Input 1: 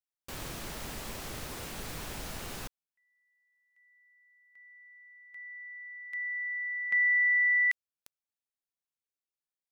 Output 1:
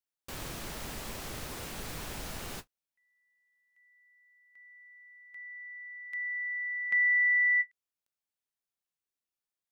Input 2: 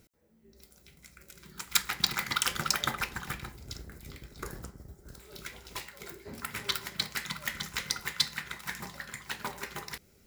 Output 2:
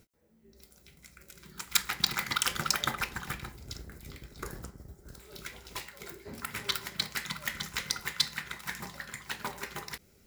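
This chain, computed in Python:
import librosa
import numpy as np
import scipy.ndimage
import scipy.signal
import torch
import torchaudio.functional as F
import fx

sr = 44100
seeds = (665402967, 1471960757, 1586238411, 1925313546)

y = fx.end_taper(x, sr, db_per_s=570.0)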